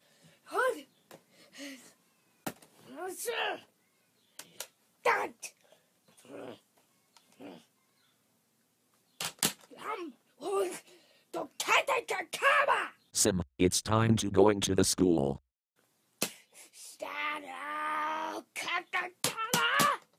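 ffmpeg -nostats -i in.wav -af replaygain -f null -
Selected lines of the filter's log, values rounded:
track_gain = +11.1 dB
track_peak = 0.222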